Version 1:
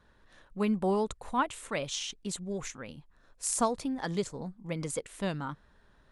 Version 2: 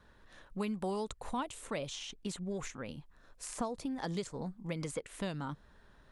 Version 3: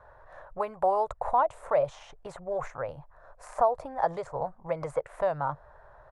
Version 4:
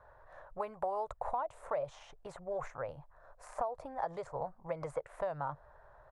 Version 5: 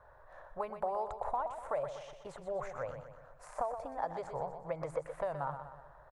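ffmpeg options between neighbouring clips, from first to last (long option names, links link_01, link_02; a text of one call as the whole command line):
ffmpeg -i in.wav -filter_complex "[0:a]acrossover=split=920|3100[link_01][link_02][link_03];[link_01]acompressor=threshold=-37dB:ratio=4[link_04];[link_02]acompressor=threshold=-49dB:ratio=4[link_05];[link_03]acompressor=threshold=-49dB:ratio=4[link_06];[link_04][link_05][link_06]amix=inputs=3:normalize=0,volume=1.5dB" out.wav
ffmpeg -i in.wav -af "firequalizer=gain_entry='entry(140,0);entry(200,-19);entry(600,14);entry(3000,-15)':delay=0.05:min_phase=1,volume=4.5dB" out.wav
ffmpeg -i in.wav -af "acompressor=threshold=-26dB:ratio=6,volume=-5.5dB" out.wav
ffmpeg -i in.wav -af "aecho=1:1:123|246|369|492|615|738:0.355|0.181|0.0923|0.0471|0.024|0.0122" out.wav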